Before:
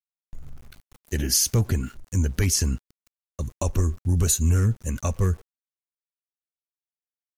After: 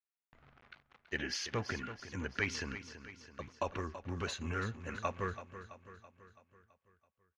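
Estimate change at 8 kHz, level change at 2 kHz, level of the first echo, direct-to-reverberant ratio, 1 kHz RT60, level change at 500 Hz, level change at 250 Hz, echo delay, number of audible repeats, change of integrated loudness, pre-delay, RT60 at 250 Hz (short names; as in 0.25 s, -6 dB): -24.0 dB, 0.0 dB, -12.0 dB, none, none, -8.0 dB, -13.5 dB, 0.331 s, 5, -16.0 dB, none, none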